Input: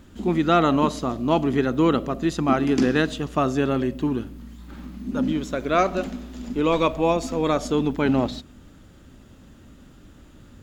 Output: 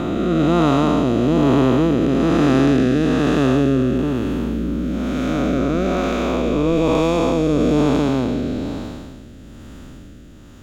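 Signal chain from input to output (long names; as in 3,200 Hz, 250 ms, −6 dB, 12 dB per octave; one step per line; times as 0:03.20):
spectrum smeared in time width 955 ms
rotating-speaker cabinet horn 1.1 Hz
in parallel at −3 dB: brickwall limiter −23.5 dBFS, peak gain reduction 8 dB
on the sum: level +8 dB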